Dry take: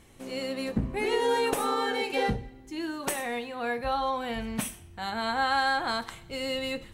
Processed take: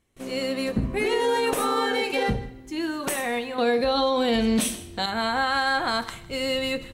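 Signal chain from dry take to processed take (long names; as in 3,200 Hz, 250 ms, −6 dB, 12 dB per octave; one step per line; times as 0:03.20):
notch filter 840 Hz, Q 12
noise gate with hold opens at −45 dBFS
0:03.58–0:05.06: graphic EQ with 10 bands 125 Hz −3 dB, 250 Hz +9 dB, 500 Hz +9 dB, 4,000 Hz +12 dB, 8,000 Hz +5 dB
brickwall limiter −20.5 dBFS, peak gain reduction 9.5 dB
single-tap delay 157 ms −20 dB
level +5.5 dB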